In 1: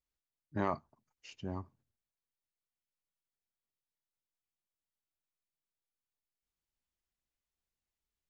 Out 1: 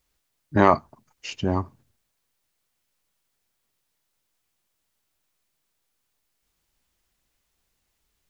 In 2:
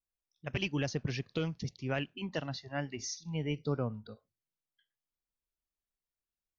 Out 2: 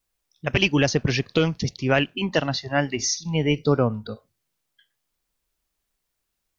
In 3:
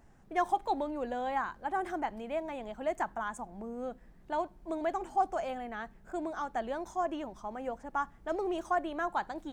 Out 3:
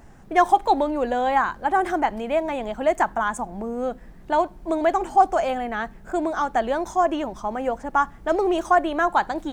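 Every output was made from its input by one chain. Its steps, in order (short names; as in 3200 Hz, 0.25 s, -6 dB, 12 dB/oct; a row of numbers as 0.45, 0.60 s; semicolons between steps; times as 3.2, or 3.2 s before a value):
dynamic EQ 140 Hz, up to -4 dB, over -46 dBFS, Q 0.95; match loudness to -23 LUFS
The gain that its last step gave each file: +17.5, +15.0, +12.5 dB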